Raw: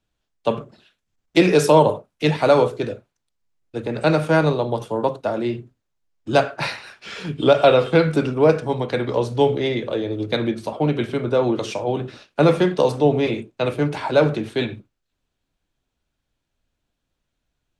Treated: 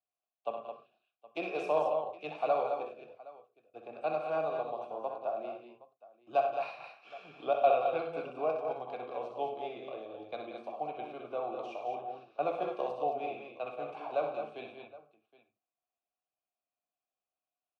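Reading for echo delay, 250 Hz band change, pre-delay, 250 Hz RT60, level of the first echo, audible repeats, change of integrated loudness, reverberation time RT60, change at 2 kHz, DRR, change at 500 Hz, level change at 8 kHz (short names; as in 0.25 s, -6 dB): 63 ms, -25.5 dB, none, none, -7.0 dB, 5, -15.5 dB, none, -18.5 dB, none, -15.0 dB, n/a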